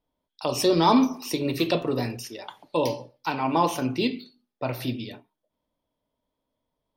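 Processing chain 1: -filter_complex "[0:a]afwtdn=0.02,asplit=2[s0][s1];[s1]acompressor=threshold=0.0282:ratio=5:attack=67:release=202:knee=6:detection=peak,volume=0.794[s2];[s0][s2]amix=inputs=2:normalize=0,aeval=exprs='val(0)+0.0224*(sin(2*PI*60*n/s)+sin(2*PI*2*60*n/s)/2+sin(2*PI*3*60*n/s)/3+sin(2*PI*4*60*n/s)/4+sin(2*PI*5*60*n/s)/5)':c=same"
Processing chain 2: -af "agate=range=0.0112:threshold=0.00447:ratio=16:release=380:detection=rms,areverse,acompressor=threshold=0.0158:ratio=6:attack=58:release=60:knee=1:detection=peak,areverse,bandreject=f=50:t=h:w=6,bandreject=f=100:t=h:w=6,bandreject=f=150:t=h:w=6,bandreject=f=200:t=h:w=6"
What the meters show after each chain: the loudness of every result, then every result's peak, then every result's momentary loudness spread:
-23.5 LUFS, -34.5 LUFS; -5.5 dBFS, -19.5 dBFS; 18 LU, 8 LU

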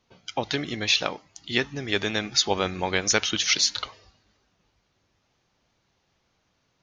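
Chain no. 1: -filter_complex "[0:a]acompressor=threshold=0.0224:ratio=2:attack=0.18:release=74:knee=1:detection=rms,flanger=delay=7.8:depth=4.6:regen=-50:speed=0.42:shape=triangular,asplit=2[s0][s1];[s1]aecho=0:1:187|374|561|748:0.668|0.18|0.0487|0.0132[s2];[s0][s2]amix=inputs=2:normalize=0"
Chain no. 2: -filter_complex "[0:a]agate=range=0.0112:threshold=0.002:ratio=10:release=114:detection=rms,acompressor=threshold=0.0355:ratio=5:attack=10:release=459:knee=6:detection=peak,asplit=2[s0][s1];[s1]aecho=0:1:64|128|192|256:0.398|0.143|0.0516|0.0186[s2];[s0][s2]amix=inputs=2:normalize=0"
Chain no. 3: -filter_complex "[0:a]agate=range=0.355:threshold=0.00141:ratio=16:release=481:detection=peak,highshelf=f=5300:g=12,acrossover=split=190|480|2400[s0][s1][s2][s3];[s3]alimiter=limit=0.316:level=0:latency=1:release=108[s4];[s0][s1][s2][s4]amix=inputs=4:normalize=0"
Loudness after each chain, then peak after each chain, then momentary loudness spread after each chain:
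-37.0 LUFS, -33.0 LUFS, -23.0 LUFS; -22.0 dBFS, -15.5 dBFS, -5.0 dBFS; 7 LU, 8 LU, 12 LU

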